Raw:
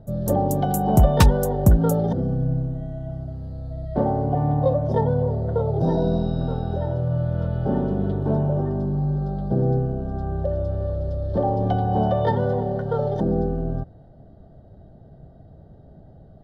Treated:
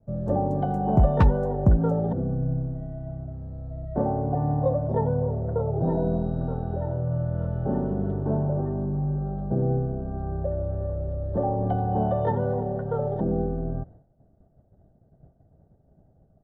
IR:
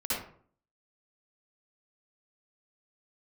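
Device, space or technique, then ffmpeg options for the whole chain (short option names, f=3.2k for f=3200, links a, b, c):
hearing-loss simulation: -af "lowpass=1.6k,agate=range=-33dB:threshold=-38dB:ratio=3:detection=peak,volume=-3.5dB"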